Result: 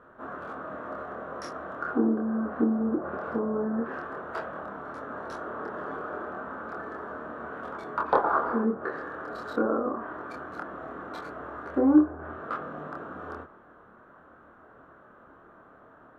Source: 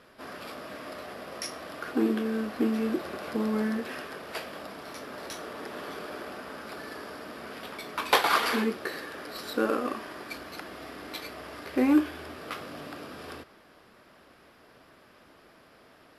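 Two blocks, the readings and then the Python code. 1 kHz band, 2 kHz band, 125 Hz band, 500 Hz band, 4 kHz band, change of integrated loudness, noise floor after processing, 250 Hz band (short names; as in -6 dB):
+2.0 dB, -3.0 dB, +1.5 dB, +2.0 dB, under -15 dB, +1.0 dB, -54 dBFS, +2.0 dB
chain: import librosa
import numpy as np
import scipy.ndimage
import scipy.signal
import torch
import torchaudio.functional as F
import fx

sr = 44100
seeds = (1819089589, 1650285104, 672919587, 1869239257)

y = fx.wiener(x, sr, points=9)
y = fx.high_shelf_res(y, sr, hz=1800.0, db=-8.0, q=3.0)
y = fx.env_lowpass_down(y, sr, base_hz=860.0, full_db=-24.5)
y = fx.doubler(y, sr, ms=26.0, db=-2)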